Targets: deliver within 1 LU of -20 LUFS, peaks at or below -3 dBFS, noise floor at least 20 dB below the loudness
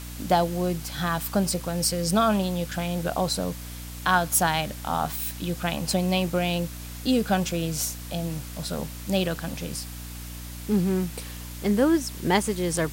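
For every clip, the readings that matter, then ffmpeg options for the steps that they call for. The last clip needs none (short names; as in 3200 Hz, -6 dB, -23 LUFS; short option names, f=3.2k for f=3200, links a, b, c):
hum 60 Hz; harmonics up to 300 Hz; hum level -37 dBFS; noise floor -38 dBFS; noise floor target -46 dBFS; loudness -26.0 LUFS; peak -5.5 dBFS; loudness target -20.0 LUFS
-> -af "bandreject=f=60:t=h:w=6,bandreject=f=120:t=h:w=6,bandreject=f=180:t=h:w=6,bandreject=f=240:t=h:w=6,bandreject=f=300:t=h:w=6"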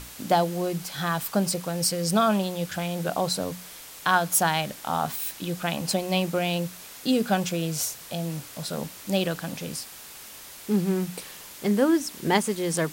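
hum none; noise floor -44 dBFS; noise floor target -47 dBFS
-> -af "afftdn=nr=6:nf=-44"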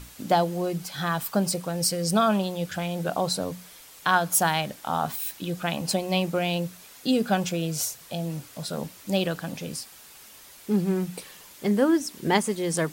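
noise floor -49 dBFS; loudness -26.5 LUFS; peak -5.0 dBFS; loudness target -20.0 LUFS
-> -af "volume=6.5dB,alimiter=limit=-3dB:level=0:latency=1"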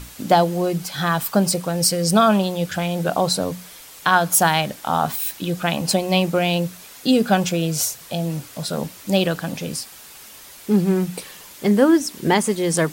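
loudness -20.0 LUFS; peak -3.0 dBFS; noise floor -42 dBFS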